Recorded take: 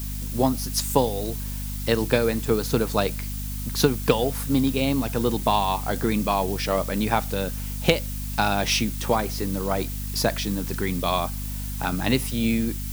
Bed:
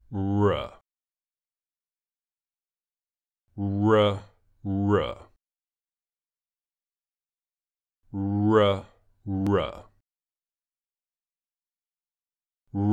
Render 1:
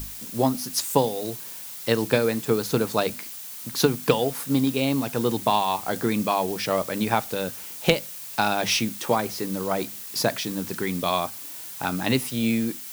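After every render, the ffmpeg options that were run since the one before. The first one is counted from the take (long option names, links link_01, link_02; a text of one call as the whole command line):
ffmpeg -i in.wav -af "bandreject=frequency=50:width_type=h:width=6,bandreject=frequency=100:width_type=h:width=6,bandreject=frequency=150:width_type=h:width=6,bandreject=frequency=200:width_type=h:width=6,bandreject=frequency=250:width_type=h:width=6" out.wav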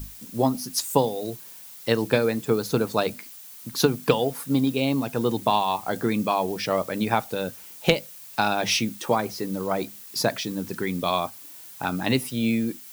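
ffmpeg -i in.wav -af "afftdn=noise_reduction=7:noise_floor=-38" out.wav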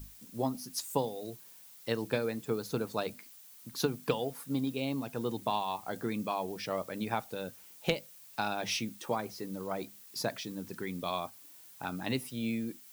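ffmpeg -i in.wav -af "volume=-10.5dB" out.wav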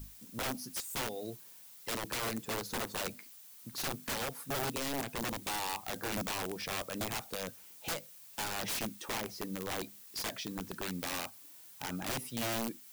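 ffmpeg -i in.wav -af "aeval=exprs='(mod(31.6*val(0)+1,2)-1)/31.6':channel_layout=same" out.wav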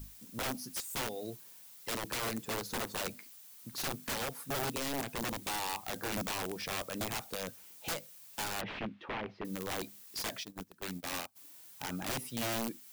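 ffmpeg -i in.wav -filter_complex "[0:a]asettb=1/sr,asplit=3[link_01][link_02][link_03];[link_01]atrim=end=8.614[link_04];[link_02]atrim=start=8.61:end=9.45,asetpts=PTS-STARTPTS,afade=type=in:duration=0.004:curve=qsin,afade=type=out:start_time=0.836:duration=0.004:curve=qsin,lowpass=frequency=2900:width=0.5412,lowpass=frequency=2900:width=1.3066[link_05];[link_03]atrim=start=9.446[link_06];[link_04][link_05]acrossfade=duration=0.004:curve1=hsin:curve2=qsin[link_07];[link_07][link_06]acrossfade=duration=0.004:curve1=qsin:curve2=hsin,asplit=3[link_08][link_09][link_10];[link_08]afade=type=out:start_time=10.43:duration=0.02[link_11];[link_09]agate=range=-20dB:threshold=-39dB:ratio=16:release=100:detection=peak,afade=type=in:start_time=10.43:duration=0.02,afade=type=out:start_time=11.35:duration=0.02[link_12];[link_10]afade=type=in:start_time=11.35:duration=0.02[link_13];[link_11][link_12][link_13]amix=inputs=3:normalize=0" out.wav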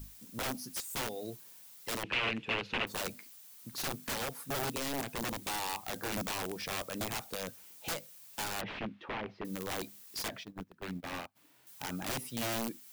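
ffmpeg -i in.wav -filter_complex "[0:a]asettb=1/sr,asplit=3[link_01][link_02][link_03];[link_01]atrim=end=2.034[link_04];[link_02]atrim=start=2.03:end=2.87,asetpts=PTS-STARTPTS,afade=type=in:duration=0.004:curve=qsin,afade=type=out:start_time=0.836:duration=0.004:curve=qsin,lowpass=frequency=2700:width_type=q:width=5.1[link_05];[link_03]atrim=start=2.866[link_06];[link_04][link_05]acrossfade=duration=0.004:curve1=hsin:curve2=qsin[link_07];[link_07][link_06]acrossfade=duration=0.004:curve1=qsin:curve2=hsin,asettb=1/sr,asplit=3[link_08][link_09][link_10];[link_08]atrim=end=10.284[link_11];[link_09]atrim=start=10.28:end=11.67,asetpts=PTS-STARTPTS,afade=type=in:duration=0.004:curve=qsin,afade=type=out:start_time=1.386:duration=0.004:curve=qsin,bass=frequency=250:gain=3,treble=frequency=4000:gain=-13[link_12];[link_10]atrim=start=11.666[link_13];[link_11][link_12]acrossfade=duration=0.004:curve1=hsin:curve2=qsin[link_14];[link_14][link_13]acrossfade=duration=0.004:curve1=qsin:curve2=hsin" out.wav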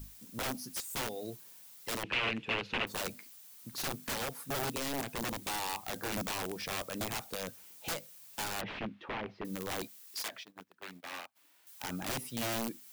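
ffmpeg -i in.wav -filter_complex "[0:a]asettb=1/sr,asplit=3[link_01][link_02][link_03];[link_01]atrim=end=9.874[link_04];[link_02]atrim=start=9.87:end=11.84,asetpts=PTS-STARTPTS,afade=type=in:duration=0.004:curve=qsin,afade=type=out:start_time=1.966:duration=0.004:curve=qsin,highpass=frequency=920:poles=1[link_05];[link_03]atrim=start=11.836[link_06];[link_04][link_05]acrossfade=duration=0.004:curve1=hsin:curve2=qsin[link_07];[link_07][link_06]acrossfade=duration=0.004:curve1=qsin:curve2=hsin" out.wav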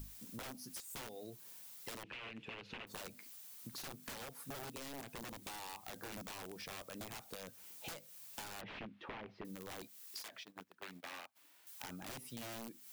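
ffmpeg -i in.wav -af "alimiter=level_in=4.5dB:limit=-24dB:level=0:latency=1:release=88,volume=-4.5dB,acompressor=threshold=-45dB:ratio=12" out.wav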